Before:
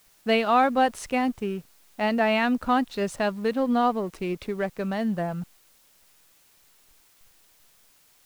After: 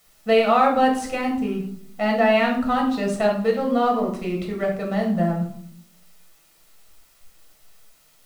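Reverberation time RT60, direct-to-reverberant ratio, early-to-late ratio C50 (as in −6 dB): 0.65 s, −0.5 dB, 6.5 dB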